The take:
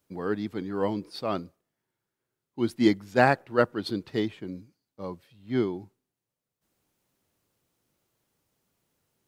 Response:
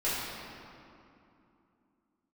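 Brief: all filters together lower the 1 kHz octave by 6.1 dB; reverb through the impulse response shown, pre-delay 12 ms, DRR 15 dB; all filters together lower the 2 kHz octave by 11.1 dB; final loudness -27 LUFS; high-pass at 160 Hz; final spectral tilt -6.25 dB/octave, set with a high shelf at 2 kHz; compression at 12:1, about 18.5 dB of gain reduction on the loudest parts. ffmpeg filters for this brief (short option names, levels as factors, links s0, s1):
-filter_complex "[0:a]highpass=160,equalizer=f=1000:t=o:g=-5.5,highshelf=f=2000:g=-7.5,equalizer=f=2000:t=o:g=-8.5,acompressor=threshold=0.0178:ratio=12,asplit=2[s0][s1];[1:a]atrim=start_sample=2205,adelay=12[s2];[s1][s2]afir=irnorm=-1:irlink=0,volume=0.0596[s3];[s0][s3]amix=inputs=2:normalize=0,volume=5.62"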